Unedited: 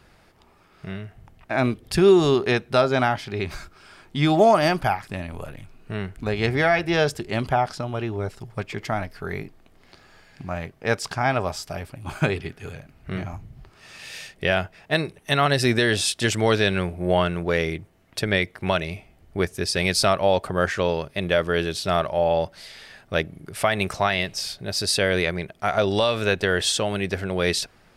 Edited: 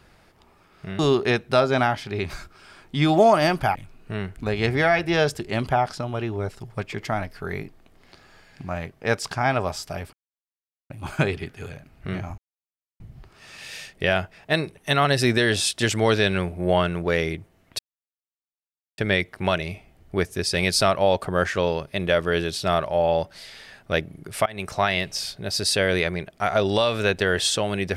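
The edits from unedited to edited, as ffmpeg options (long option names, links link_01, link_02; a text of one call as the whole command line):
ffmpeg -i in.wav -filter_complex "[0:a]asplit=7[link_01][link_02][link_03][link_04][link_05][link_06][link_07];[link_01]atrim=end=0.992[link_08];[link_02]atrim=start=2.198:end=4.962[link_09];[link_03]atrim=start=5.548:end=11.93,asetpts=PTS-STARTPTS,afade=type=out:start_time=6.378:duration=0.004:curve=hsin,apad=pad_dur=0.77[link_10];[link_04]atrim=start=11.93:end=13.41,asetpts=PTS-STARTPTS,afade=type=in:duration=0.004:curve=hsin,afade=type=out:start_time=1.476:duration=0.004:curve=hsin,apad=pad_dur=0.62[link_11];[link_05]atrim=start=13.41:end=18.2,asetpts=PTS-STARTPTS,afade=type=in:duration=0.004:curve=hsin,afade=type=out:start_time=4.786:duration=0.004:curve=hsin,apad=pad_dur=1.19[link_12];[link_06]atrim=start=18.2:end=23.68,asetpts=PTS-STARTPTS,afade=type=in:duration=0.004:curve=hsin,afade=type=out:start_time=5.476:duration=0.004:curve=hsin:silence=0.0707946[link_13];[link_07]atrim=start=23.68,asetpts=PTS-STARTPTS,afade=type=in:duration=0.36:silence=0.0707946[link_14];[link_08][link_09]acrossfade=duration=0.004:curve1=hsin:curve2=hsin[link_15];[link_10][link_11][link_12][link_13][link_14]concat=n=5:v=0:a=1[link_16];[link_15][link_16]acrossfade=duration=0.004:curve1=hsin:curve2=hsin" out.wav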